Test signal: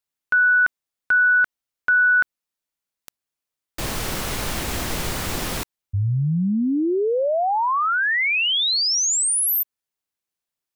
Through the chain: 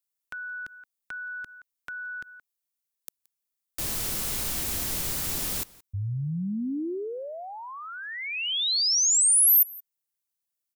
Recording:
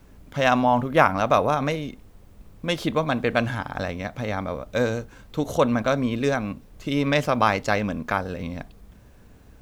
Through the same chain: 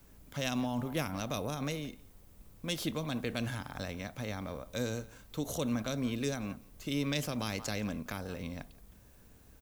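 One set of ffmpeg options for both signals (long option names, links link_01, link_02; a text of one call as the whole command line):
ffmpeg -i in.wav -filter_complex "[0:a]crystalizer=i=2:c=0,aecho=1:1:173:0.0668,acrossover=split=390|2800[link_01][link_02][link_03];[link_02]acompressor=threshold=-31dB:ratio=6:attack=2.5:release=80:knee=2.83:detection=peak[link_04];[link_01][link_04][link_03]amix=inputs=3:normalize=0,volume=-9dB" out.wav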